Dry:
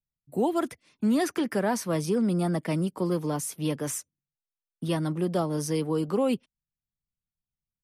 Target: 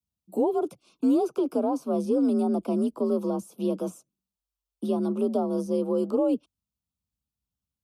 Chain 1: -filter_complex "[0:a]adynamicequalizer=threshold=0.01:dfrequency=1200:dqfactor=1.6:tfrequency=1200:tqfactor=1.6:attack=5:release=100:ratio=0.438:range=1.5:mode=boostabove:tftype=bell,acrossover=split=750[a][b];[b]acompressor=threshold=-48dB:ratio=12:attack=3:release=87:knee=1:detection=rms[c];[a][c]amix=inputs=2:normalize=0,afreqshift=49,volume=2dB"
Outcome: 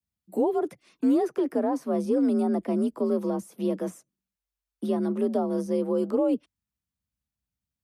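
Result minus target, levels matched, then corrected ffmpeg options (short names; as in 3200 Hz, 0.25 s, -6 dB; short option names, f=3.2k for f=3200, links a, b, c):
2000 Hz band +7.5 dB
-filter_complex "[0:a]adynamicequalizer=threshold=0.01:dfrequency=1200:dqfactor=1.6:tfrequency=1200:tqfactor=1.6:attack=5:release=100:ratio=0.438:range=1.5:mode=boostabove:tftype=bell,asuperstop=centerf=1800:order=4:qfactor=1.5,acrossover=split=750[a][b];[b]acompressor=threshold=-48dB:ratio=12:attack=3:release=87:knee=1:detection=rms[c];[a][c]amix=inputs=2:normalize=0,afreqshift=49,volume=2dB"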